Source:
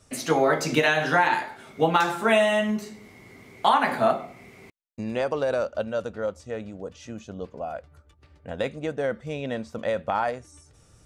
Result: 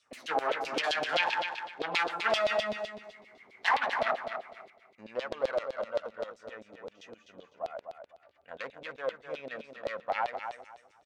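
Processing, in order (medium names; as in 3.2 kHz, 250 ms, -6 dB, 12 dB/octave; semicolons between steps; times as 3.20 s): self-modulated delay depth 0.32 ms; LFO band-pass saw down 7.7 Hz 520–4100 Hz; feedback delay 251 ms, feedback 23%, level -7.5 dB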